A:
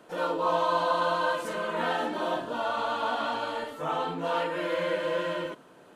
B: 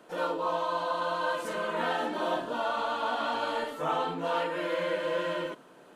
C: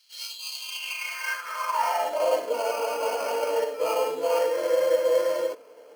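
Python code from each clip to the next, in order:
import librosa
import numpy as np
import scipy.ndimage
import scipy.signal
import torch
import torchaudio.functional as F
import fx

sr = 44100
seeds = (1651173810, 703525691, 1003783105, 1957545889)

y1 = fx.peak_eq(x, sr, hz=85.0, db=-14.5, octaves=0.67)
y1 = fx.rider(y1, sr, range_db=10, speed_s=0.5)
y1 = y1 * librosa.db_to_amplitude(-1.5)
y2 = fx.sample_hold(y1, sr, seeds[0], rate_hz=3700.0, jitter_pct=0)
y2 = fx.filter_sweep_highpass(y2, sr, from_hz=3900.0, to_hz=460.0, start_s=0.55, end_s=2.4, q=4.8)
y2 = fx.notch_comb(y2, sr, f0_hz=380.0)
y2 = y2 * librosa.db_to_amplitude(-1.0)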